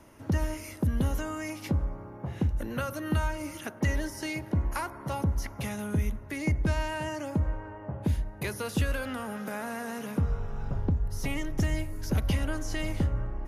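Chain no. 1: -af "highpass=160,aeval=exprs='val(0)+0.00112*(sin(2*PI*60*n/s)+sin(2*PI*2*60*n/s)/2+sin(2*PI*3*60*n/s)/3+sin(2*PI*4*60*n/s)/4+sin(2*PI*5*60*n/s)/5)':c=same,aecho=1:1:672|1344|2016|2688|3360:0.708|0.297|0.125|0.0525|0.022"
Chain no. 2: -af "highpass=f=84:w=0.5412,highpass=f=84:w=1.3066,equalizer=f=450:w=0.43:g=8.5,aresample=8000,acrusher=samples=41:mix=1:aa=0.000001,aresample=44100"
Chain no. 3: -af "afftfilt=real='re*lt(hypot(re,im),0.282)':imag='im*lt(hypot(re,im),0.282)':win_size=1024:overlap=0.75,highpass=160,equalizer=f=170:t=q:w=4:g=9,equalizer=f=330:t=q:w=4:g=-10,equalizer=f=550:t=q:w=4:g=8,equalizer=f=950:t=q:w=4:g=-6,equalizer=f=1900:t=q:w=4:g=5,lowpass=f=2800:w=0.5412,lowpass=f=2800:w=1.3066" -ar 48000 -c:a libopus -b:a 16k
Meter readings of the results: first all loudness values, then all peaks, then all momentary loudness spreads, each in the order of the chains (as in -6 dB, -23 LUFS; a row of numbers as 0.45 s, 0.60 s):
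-33.5 LUFS, -31.5 LUFS, -36.0 LUFS; -15.5 dBFS, -10.5 dBFS, -17.0 dBFS; 4 LU, 7 LU, 8 LU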